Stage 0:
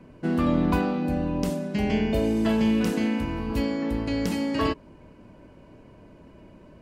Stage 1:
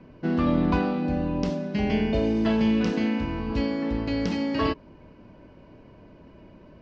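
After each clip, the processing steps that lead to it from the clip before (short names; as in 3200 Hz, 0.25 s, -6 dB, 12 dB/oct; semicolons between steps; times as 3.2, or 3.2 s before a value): steep low-pass 5800 Hz 36 dB/oct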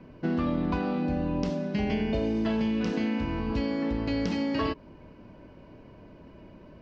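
compressor, threshold -24 dBFS, peak gain reduction 6.5 dB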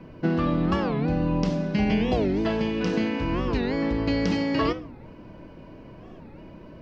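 shoebox room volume 890 m³, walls furnished, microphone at 0.68 m; record warp 45 rpm, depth 250 cents; gain +4.5 dB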